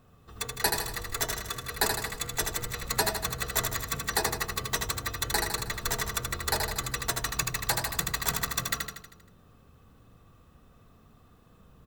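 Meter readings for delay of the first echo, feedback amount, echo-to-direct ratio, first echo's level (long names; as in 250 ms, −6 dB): 79 ms, 54%, −3.0 dB, −4.5 dB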